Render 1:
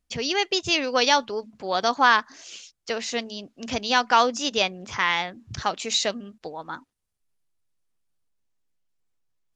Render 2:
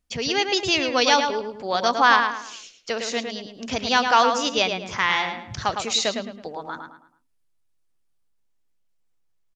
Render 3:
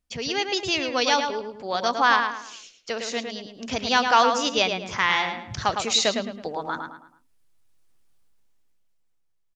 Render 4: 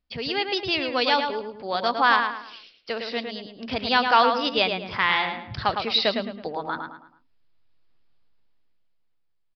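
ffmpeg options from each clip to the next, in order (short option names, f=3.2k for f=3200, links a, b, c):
-filter_complex "[0:a]asplit=2[a][b];[b]adelay=108,lowpass=f=3.4k:p=1,volume=-5.5dB,asplit=2[c][d];[d]adelay=108,lowpass=f=3.4k:p=1,volume=0.36,asplit=2[e][f];[f]adelay=108,lowpass=f=3.4k:p=1,volume=0.36,asplit=2[g][h];[h]adelay=108,lowpass=f=3.4k:p=1,volume=0.36[i];[a][c][e][g][i]amix=inputs=5:normalize=0,volume=1dB"
-af "dynaudnorm=f=220:g=13:m=15.5dB,volume=-3.5dB"
-af "aresample=11025,aresample=44100"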